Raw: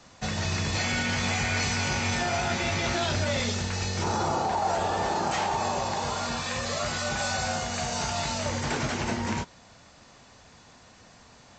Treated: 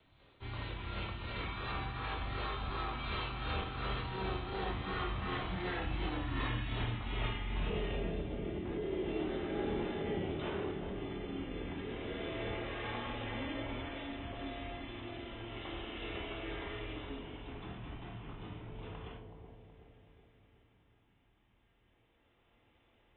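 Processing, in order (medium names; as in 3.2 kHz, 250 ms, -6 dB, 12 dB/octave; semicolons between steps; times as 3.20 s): Doppler pass-by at 3.34 s, 23 m/s, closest 13 m; compression 16:1, threshold -38 dBFS, peak gain reduction 14.5 dB; feedback comb 78 Hz, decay 0.27 s, harmonics all, mix 70%; rotary cabinet horn 5.5 Hz, later 0.6 Hz, at 3.35 s; bucket-brigade echo 187 ms, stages 2048, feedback 53%, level -6 dB; speed mistake 15 ips tape played at 7.5 ips; trim +11.5 dB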